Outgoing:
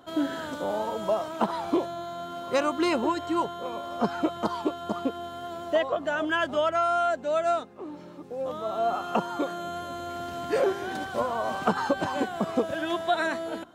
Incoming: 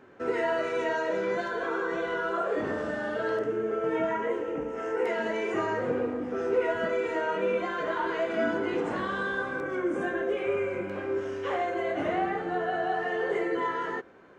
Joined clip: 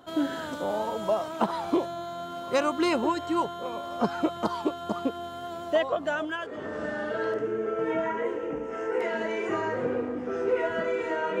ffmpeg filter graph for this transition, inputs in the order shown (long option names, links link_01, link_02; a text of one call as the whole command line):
ffmpeg -i cue0.wav -i cue1.wav -filter_complex "[0:a]apad=whole_dur=11.4,atrim=end=11.4,atrim=end=6.85,asetpts=PTS-STARTPTS[link_01];[1:a]atrim=start=2.16:end=7.45,asetpts=PTS-STARTPTS[link_02];[link_01][link_02]acrossfade=duration=0.74:curve1=qua:curve2=qua" out.wav